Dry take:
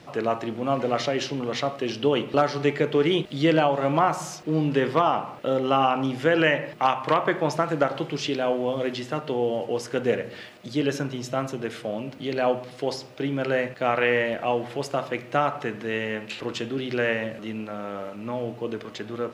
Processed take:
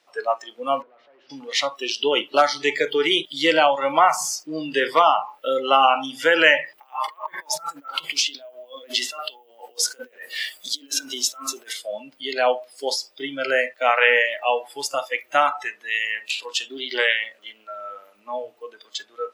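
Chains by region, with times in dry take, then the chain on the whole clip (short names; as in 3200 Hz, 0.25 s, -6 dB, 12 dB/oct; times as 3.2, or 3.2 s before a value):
0.82–1.3 compressor 10:1, threshold -25 dBFS + hard clip -29.5 dBFS + tape spacing loss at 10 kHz 45 dB
6.78–11.73 HPF 210 Hz + negative-ratio compressor -34 dBFS + requantised 12-bit, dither none
16.68–17.78 low shelf 200 Hz -4 dB + Doppler distortion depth 0.17 ms
whole clip: HPF 440 Hz 12 dB/oct; spectral noise reduction 21 dB; tilt +2 dB/oct; gain +6.5 dB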